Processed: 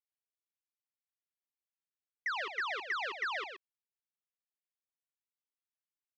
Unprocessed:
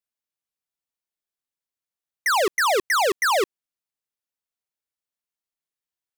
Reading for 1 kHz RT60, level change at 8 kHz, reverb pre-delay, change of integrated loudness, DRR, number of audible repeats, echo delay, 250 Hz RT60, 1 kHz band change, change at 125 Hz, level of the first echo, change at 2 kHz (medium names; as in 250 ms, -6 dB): no reverb, -31.0 dB, no reverb, -15.0 dB, no reverb, 1, 125 ms, no reverb, -17.0 dB, no reading, -7.0 dB, -12.0 dB